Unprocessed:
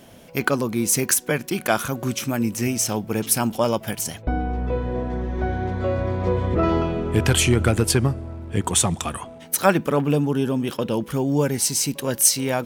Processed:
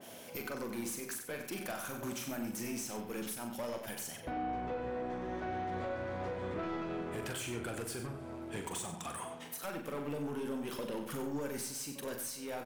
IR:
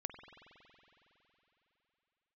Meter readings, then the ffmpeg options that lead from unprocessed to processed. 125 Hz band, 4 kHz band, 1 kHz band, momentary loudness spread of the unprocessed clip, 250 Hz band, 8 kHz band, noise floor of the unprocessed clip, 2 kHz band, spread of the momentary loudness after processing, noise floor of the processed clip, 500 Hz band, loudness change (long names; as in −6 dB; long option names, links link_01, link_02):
−23.0 dB, −18.5 dB, −13.5 dB, 8 LU, −16.5 dB, −20.5 dB, −43 dBFS, −16.0 dB, 4 LU, −48 dBFS, −16.0 dB, −17.5 dB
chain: -filter_complex "[0:a]highpass=frequency=350:poles=1,highshelf=frequency=5700:gain=7,acompressor=threshold=-30dB:ratio=6,asoftclip=type=tanh:threshold=-32dB,asplit=2[link_01][link_02];[link_02]adelay=93.29,volume=-8dB,highshelf=frequency=4000:gain=-2.1[link_03];[link_01][link_03]amix=inputs=2:normalize=0,asplit=2[link_04][link_05];[1:a]atrim=start_sample=2205,afade=type=out:start_time=0.35:duration=0.01,atrim=end_sample=15876,adelay=42[link_06];[link_05][link_06]afir=irnorm=-1:irlink=0,volume=-3dB[link_07];[link_04][link_07]amix=inputs=2:normalize=0,adynamicequalizer=threshold=0.00251:dfrequency=2500:dqfactor=0.7:tfrequency=2500:tqfactor=0.7:attack=5:release=100:ratio=0.375:range=2:mode=cutabove:tftype=highshelf,volume=-2.5dB"